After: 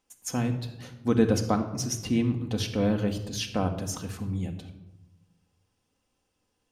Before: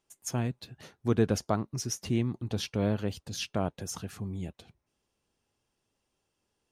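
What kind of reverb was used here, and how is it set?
shoebox room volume 3400 m³, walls furnished, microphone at 2 m; gain +2 dB

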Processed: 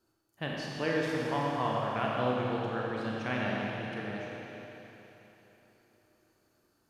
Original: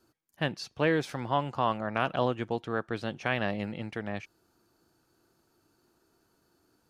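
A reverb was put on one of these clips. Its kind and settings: Schroeder reverb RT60 3.6 s, combs from 28 ms, DRR -4 dB; gain -7 dB

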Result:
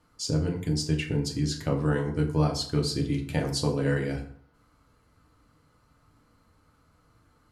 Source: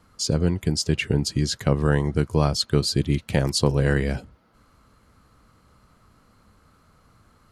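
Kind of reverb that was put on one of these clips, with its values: FDN reverb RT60 0.57 s, low-frequency decay 1×, high-frequency decay 0.65×, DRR 0.5 dB; gain -8.5 dB

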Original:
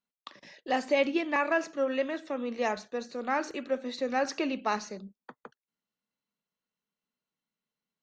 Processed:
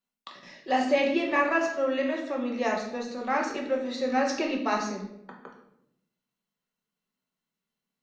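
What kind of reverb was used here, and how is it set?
shoebox room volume 190 m³, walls mixed, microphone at 1.1 m

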